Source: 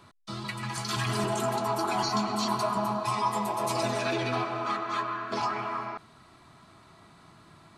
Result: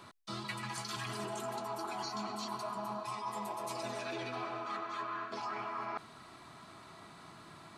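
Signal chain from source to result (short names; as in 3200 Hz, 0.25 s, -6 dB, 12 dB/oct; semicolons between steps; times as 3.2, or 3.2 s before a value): low shelf 130 Hz -10 dB; reverse; compressor 12:1, threshold -39 dBFS, peak gain reduction 16.5 dB; reverse; gain +2.5 dB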